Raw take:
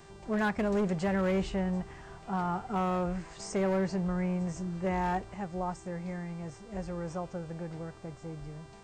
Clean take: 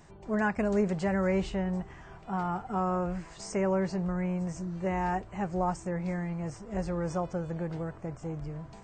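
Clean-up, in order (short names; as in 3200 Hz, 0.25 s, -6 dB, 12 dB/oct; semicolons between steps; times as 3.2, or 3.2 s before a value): clip repair -24.5 dBFS; de-hum 393.5 Hz, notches 23; gain 0 dB, from 5.34 s +5 dB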